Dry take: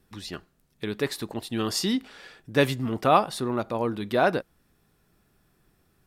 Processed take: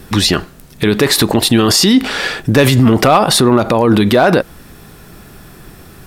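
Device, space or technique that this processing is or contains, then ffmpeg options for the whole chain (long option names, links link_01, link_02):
loud club master: -af "acompressor=threshold=-25dB:ratio=2,asoftclip=type=hard:threshold=-17.5dB,alimiter=level_in=29.5dB:limit=-1dB:release=50:level=0:latency=1,volume=-1dB"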